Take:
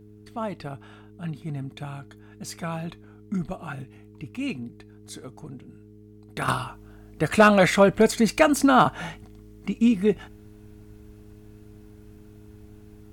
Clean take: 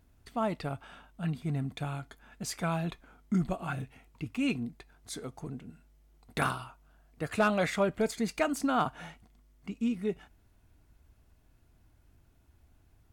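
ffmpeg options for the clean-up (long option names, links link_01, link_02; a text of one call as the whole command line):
ffmpeg -i in.wav -af "bandreject=frequency=105.1:width_type=h:width=4,bandreject=frequency=210.2:width_type=h:width=4,bandreject=frequency=315.3:width_type=h:width=4,bandreject=frequency=420.4:width_type=h:width=4,asetnsamples=nb_out_samples=441:pad=0,asendcmd='6.48 volume volume -11dB',volume=0dB" out.wav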